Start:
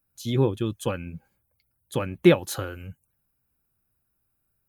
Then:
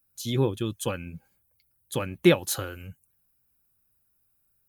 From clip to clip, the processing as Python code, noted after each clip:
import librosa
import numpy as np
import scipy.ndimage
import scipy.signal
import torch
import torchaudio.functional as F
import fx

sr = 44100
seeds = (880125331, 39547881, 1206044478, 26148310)

y = fx.high_shelf(x, sr, hz=3100.0, db=8.0)
y = F.gain(torch.from_numpy(y), -2.5).numpy()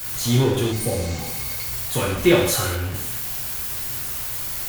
y = x + 0.5 * 10.0 ** (-26.5 / 20.0) * np.sign(x)
y = fx.rev_gated(y, sr, seeds[0], gate_ms=250, shape='falling', drr_db=-4.5)
y = fx.spec_repair(y, sr, seeds[1], start_s=0.75, length_s=0.79, low_hz=860.0, high_hz=8100.0, source='after')
y = F.gain(torch.from_numpy(y), -1.5).numpy()